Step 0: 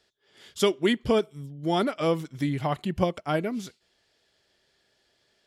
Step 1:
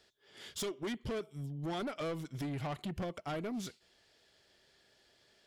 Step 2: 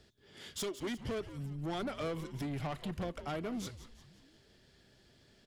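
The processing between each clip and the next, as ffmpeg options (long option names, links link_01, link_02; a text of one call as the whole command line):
ffmpeg -i in.wav -af "acompressor=threshold=-34dB:ratio=2.5,asoftclip=type=tanh:threshold=-35dB,volume=1dB" out.wav
ffmpeg -i in.wav -filter_complex "[0:a]asplit=6[link_01][link_02][link_03][link_04][link_05][link_06];[link_02]adelay=176,afreqshift=-130,volume=-12.5dB[link_07];[link_03]adelay=352,afreqshift=-260,volume=-19.1dB[link_08];[link_04]adelay=528,afreqshift=-390,volume=-25.6dB[link_09];[link_05]adelay=704,afreqshift=-520,volume=-32.2dB[link_10];[link_06]adelay=880,afreqshift=-650,volume=-38.7dB[link_11];[link_01][link_07][link_08][link_09][link_10][link_11]amix=inputs=6:normalize=0,acrossover=split=270[link_12][link_13];[link_12]acompressor=mode=upward:threshold=-54dB:ratio=2.5[link_14];[link_14][link_13]amix=inputs=2:normalize=0" out.wav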